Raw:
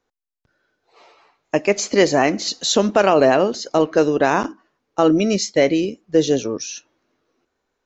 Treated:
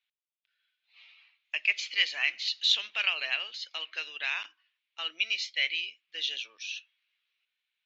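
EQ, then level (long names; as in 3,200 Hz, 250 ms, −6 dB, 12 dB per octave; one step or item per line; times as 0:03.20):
flat-topped band-pass 2,900 Hz, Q 2
+3.0 dB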